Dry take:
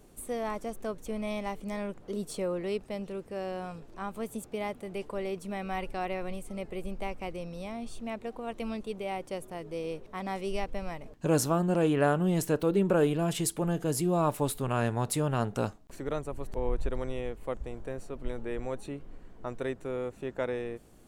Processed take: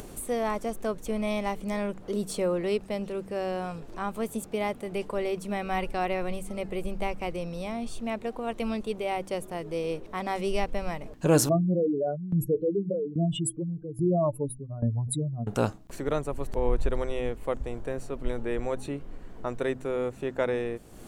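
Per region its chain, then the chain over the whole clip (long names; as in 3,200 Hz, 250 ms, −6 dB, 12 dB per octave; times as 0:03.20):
0:11.49–0:15.47: expanding power law on the bin magnitudes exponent 3.9 + shaped tremolo saw down 1.2 Hz, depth 85%
whole clip: hum removal 64.21 Hz, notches 5; upward compression, threshold −39 dBFS; level +5 dB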